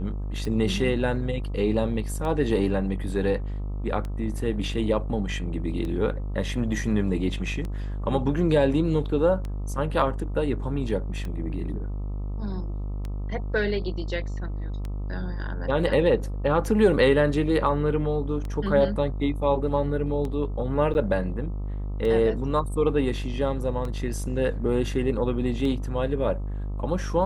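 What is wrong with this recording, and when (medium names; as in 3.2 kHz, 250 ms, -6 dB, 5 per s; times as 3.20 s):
buzz 50 Hz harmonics 26 -30 dBFS
tick 33 1/3 rpm -21 dBFS
20.94–20.95 s: dropout 9.3 ms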